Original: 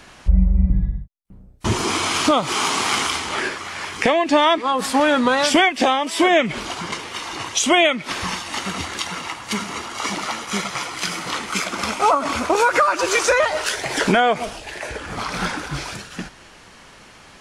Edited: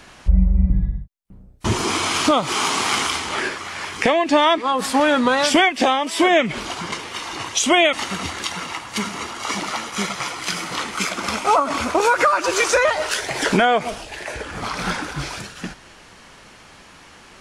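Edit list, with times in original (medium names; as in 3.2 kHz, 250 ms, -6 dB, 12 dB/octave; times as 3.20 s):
7.93–8.48 s: delete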